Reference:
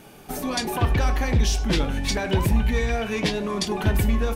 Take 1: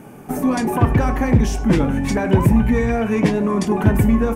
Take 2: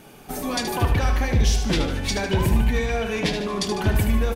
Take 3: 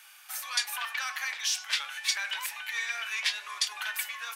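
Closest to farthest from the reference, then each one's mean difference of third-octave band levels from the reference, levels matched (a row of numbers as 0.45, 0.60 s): 2, 1, 3; 2.0, 5.5, 17.5 dB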